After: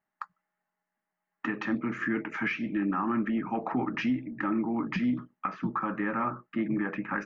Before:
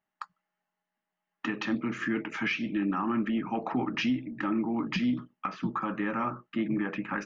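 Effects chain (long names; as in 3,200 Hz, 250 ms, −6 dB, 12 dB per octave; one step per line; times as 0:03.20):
high shelf with overshoot 2,500 Hz −7 dB, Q 1.5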